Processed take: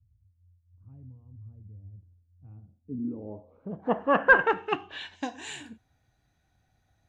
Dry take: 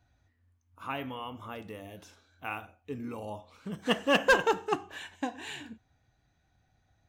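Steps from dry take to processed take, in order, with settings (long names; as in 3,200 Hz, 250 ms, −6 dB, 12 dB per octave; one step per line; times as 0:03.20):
low-pass filter sweep 100 Hz → 12,000 Hz, 0:02.32–0:05.83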